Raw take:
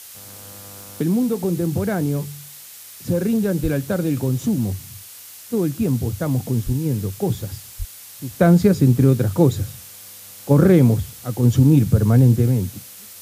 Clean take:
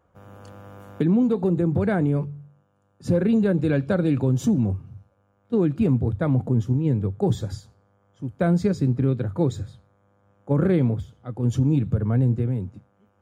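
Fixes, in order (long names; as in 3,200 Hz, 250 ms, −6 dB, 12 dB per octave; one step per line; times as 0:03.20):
high-pass at the plosives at 0:03.62/0:06.65/0:07.78
noise reduction from a noise print 23 dB
level 0 dB, from 0:08.31 −7 dB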